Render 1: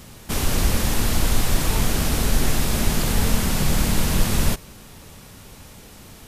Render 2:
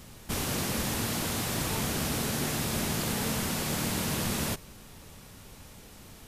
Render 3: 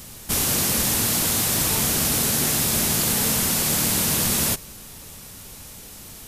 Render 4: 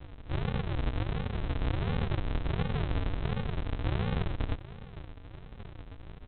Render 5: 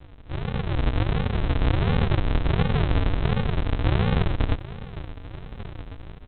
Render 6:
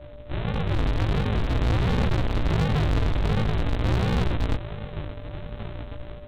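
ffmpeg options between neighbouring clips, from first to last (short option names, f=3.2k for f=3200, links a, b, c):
-af "afftfilt=real='re*lt(hypot(re,im),0.631)':imag='im*lt(hypot(re,im),0.631)':win_size=1024:overlap=0.75,volume=-6dB"
-af "highshelf=f=4.7k:g=11.5,volume=4.5dB"
-af "alimiter=limit=-15dB:level=0:latency=1:release=122,aresample=8000,acrusher=samples=34:mix=1:aa=0.000001:lfo=1:lforange=20.4:lforate=1.4,aresample=44100"
-af "dynaudnorm=f=250:g=5:m=9dB"
-af "flanger=delay=16.5:depth=3.5:speed=0.49,aeval=exprs='val(0)+0.00355*sin(2*PI*590*n/s)':c=same,volume=24dB,asoftclip=hard,volume=-24dB,volume=5dB"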